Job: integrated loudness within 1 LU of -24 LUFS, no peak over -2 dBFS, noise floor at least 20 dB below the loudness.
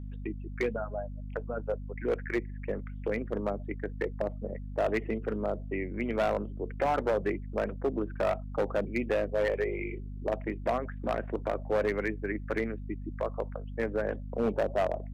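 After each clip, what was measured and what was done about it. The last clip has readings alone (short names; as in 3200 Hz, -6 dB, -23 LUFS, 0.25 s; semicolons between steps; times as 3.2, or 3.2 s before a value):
clipped 1.7%; flat tops at -22.0 dBFS; hum 50 Hz; harmonics up to 250 Hz; hum level -37 dBFS; loudness -32.5 LUFS; peak -22.0 dBFS; loudness target -24.0 LUFS
-> clip repair -22 dBFS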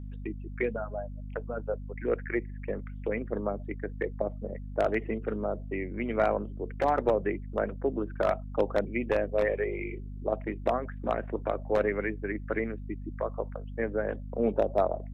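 clipped 0.0%; hum 50 Hz; harmonics up to 250 Hz; hum level -37 dBFS
-> notches 50/100/150/200/250 Hz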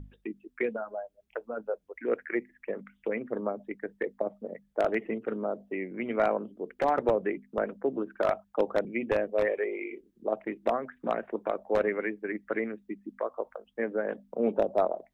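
hum none; loudness -32.0 LUFS; peak -12.5 dBFS; loudness target -24.0 LUFS
-> gain +8 dB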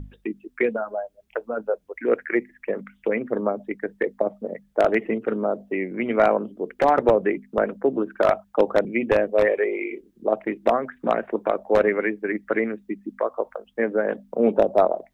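loudness -24.0 LUFS; peak -4.5 dBFS; noise floor -64 dBFS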